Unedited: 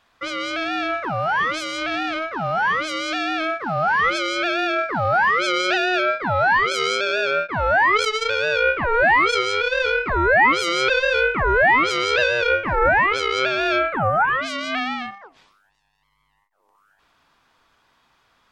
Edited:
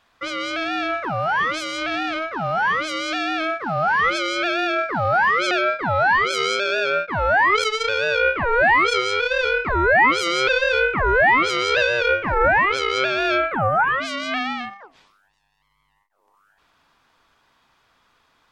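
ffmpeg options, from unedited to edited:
-filter_complex "[0:a]asplit=2[s0][s1];[s0]atrim=end=5.512[s2];[s1]atrim=start=5.918[s3];[s2][s3]acrossfade=d=0.004:c1=hsin:c2=hsin"

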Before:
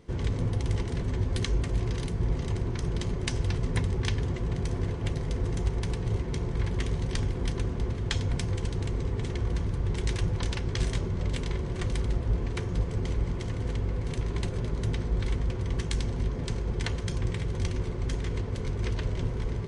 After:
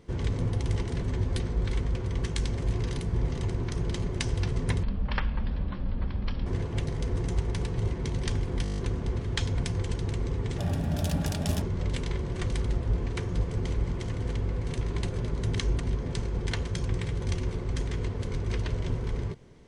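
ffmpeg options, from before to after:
-filter_complex "[0:a]asplit=17[s0][s1][s2][s3][s4][s5][s6][s7][s8][s9][s10][s11][s12][s13][s14][s15][s16];[s0]atrim=end=1.402[s17];[s1]atrim=start=14.948:end=16.132[s18];[s2]atrim=start=1.648:end=3.904[s19];[s3]atrim=start=3.9:end=4.75,asetpts=PTS-STARTPTS,asetrate=22932,aresample=44100[s20];[s4]atrim=start=4.746:end=6.402[s21];[s5]atrim=start=6.988:end=7.532[s22];[s6]atrim=start=7.508:end=7.532[s23];[s7]atrim=start=7.508:end=7.532[s24];[s8]atrim=start=7.508:end=7.532[s25];[s9]atrim=start=7.508:end=7.532[s26];[s10]atrim=start=7.508:end=7.532[s27];[s11]atrim=start=7.508:end=7.532[s28];[s12]atrim=start=7.508:end=9.324[s29];[s13]atrim=start=9.32:end=11.02,asetpts=PTS-STARTPTS,asetrate=72324,aresample=44100,atrim=end_sample=45713,asetpts=PTS-STARTPTS[s30];[s14]atrim=start=11.016:end=14.952[s31];[s15]atrim=start=1.398:end=1.652[s32];[s16]atrim=start=16.128[s33];[s17][s18]acrossfade=d=0.004:c1=hsin:c2=hsin[s34];[s34][s19]acrossfade=d=0.004:c1=hsin:c2=hsin[s35];[s35][s20]acrossfade=d=0.004:c1=hsin:c2=hsin[s36];[s36][s21]acrossfade=d=0.004:c1=hsin:c2=hsin[s37];[s37][s22]acrossfade=d=0.004:c1=hsin:c2=hsin[s38];[s38][s23]acrossfade=d=0.004:c1=hsin:c2=hsin[s39];[s39][s24]acrossfade=d=0.004:c1=hsin:c2=hsin[s40];[s40][s25]acrossfade=d=0.004:c1=hsin:c2=hsin[s41];[s41][s26]acrossfade=d=0.004:c1=hsin:c2=hsin[s42];[s42][s27]acrossfade=d=0.004:c1=hsin:c2=hsin[s43];[s43][s28]acrossfade=d=0.004:c1=hsin:c2=hsin[s44];[s44][s29]acrossfade=d=0.004:c1=hsin:c2=hsin[s45];[s45][s30]acrossfade=d=0.004:c1=hsin:c2=hsin[s46];[s46][s31]acrossfade=d=0.004:c1=hsin:c2=hsin[s47];[s47][s32]acrossfade=d=0.004:c1=hsin:c2=hsin[s48];[s48][s33]acrossfade=d=0.004:c1=hsin:c2=hsin"

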